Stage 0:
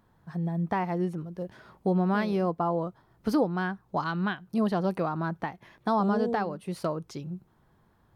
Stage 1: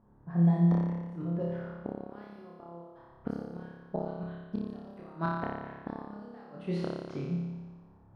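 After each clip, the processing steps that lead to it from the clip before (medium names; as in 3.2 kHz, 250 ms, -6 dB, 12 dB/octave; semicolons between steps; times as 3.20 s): level-controlled noise filter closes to 820 Hz, open at -23.5 dBFS; inverted gate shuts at -22 dBFS, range -28 dB; flutter echo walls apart 5 m, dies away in 1.3 s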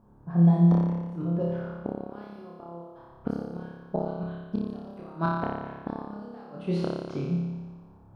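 peaking EQ 1.9 kHz -9.5 dB 0.27 oct; trim +5 dB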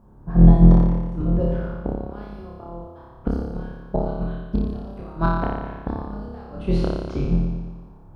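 octave divider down 2 oct, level +2 dB; trim +4.5 dB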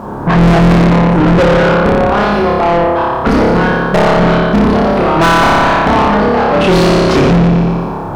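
overdrive pedal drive 45 dB, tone 2.9 kHz, clips at -1 dBFS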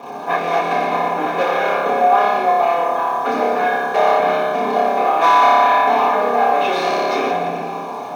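ladder high-pass 620 Hz, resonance 40%; in parallel at -8 dB: bit crusher 5-bit; on the sum: reverberation RT60 0.15 s, pre-delay 3 ms, DRR -3 dB; trim -10.5 dB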